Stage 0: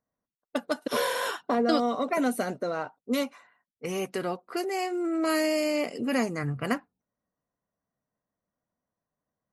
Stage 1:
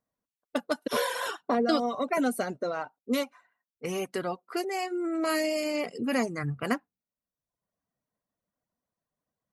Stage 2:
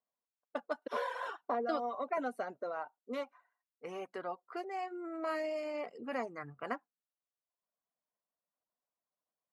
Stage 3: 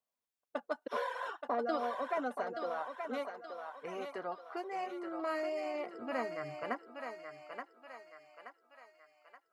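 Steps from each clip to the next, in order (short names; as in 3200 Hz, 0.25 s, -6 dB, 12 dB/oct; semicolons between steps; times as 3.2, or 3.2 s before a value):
reverb removal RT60 0.74 s
band-pass 900 Hz, Q 0.94; gain -5 dB
thinning echo 0.876 s, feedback 51%, high-pass 510 Hz, level -5 dB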